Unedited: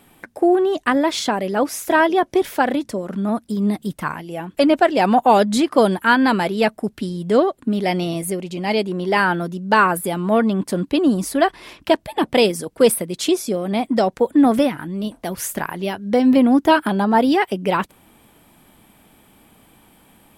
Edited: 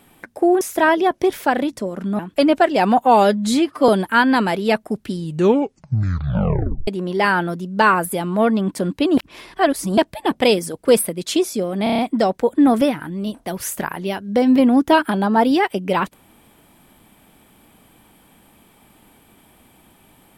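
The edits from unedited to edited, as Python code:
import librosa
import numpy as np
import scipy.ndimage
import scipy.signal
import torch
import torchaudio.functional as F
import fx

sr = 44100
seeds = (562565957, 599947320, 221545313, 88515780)

y = fx.edit(x, sr, fx.cut(start_s=0.61, length_s=1.12),
    fx.cut(start_s=3.31, length_s=1.09),
    fx.stretch_span(start_s=5.24, length_s=0.57, factor=1.5),
    fx.tape_stop(start_s=7.07, length_s=1.73),
    fx.reverse_span(start_s=11.1, length_s=0.8),
    fx.stutter(start_s=13.76, slice_s=0.03, count=6), tone=tone)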